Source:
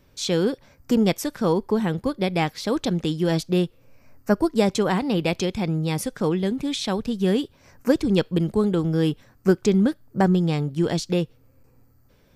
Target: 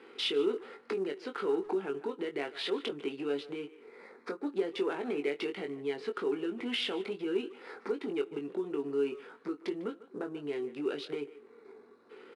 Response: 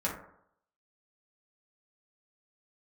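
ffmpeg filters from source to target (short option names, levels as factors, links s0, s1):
-filter_complex "[0:a]deesser=0.5,aemphasis=mode=reproduction:type=50fm,acompressor=threshold=0.0447:ratio=16,alimiter=level_in=2:limit=0.0631:level=0:latency=1:release=424,volume=0.501,asetrate=38170,aresample=44100,atempo=1.15535,asoftclip=type=tanh:threshold=0.0282,highpass=f=310:w=0.5412,highpass=f=310:w=1.3066,equalizer=f=410:t=q:w=4:g=9,equalizer=f=630:t=q:w=4:g=-8,equalizer=f=1400:t=q:w=4:g=4,equalizer=f=2400:t=q:w=4:g=5,lowpass=f=4300:w=0.5412,lowpass=f=4300:w=1.3066,asplit=2[s0][s1];[s1]adelay=21,volume=0.501[s2];[s0][s2]amix=inputs=2:normalize=0,asplit=2[s3][s4];[s4]adelay=150,highpass=300,lowpass=3400,asoftclip=type=hard:threshold=0.0141,volume=0.158[s5];[s3][s5]amix=inputs=2:normalize=0,asplit=2[s6][s7];[1:a]atrim=start_sample=2205,highshelf=f=11000:g=-9,adelay=8[s8];[s7][s8]afir=irnorm=-1:irlink=0,volume=0.0335[s9];[s6][s9]amix=inputs=2:normalize=0,volume=2.51" -ar 22050 -c:a adpcm_ima_wav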